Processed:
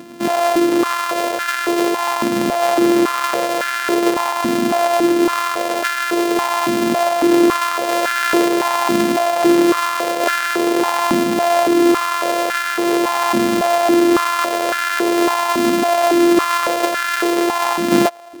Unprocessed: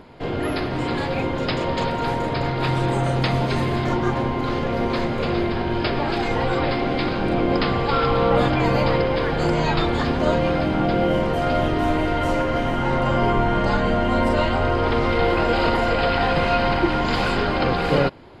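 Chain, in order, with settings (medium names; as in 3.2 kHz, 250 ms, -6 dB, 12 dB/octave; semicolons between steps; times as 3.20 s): sorted samples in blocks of 128 samples; in parallel at +1.5 dB: gain riding; on the sum: step-sequenced high-pass 3.6 Hz 240–1500 Hz; trim -5.5 dB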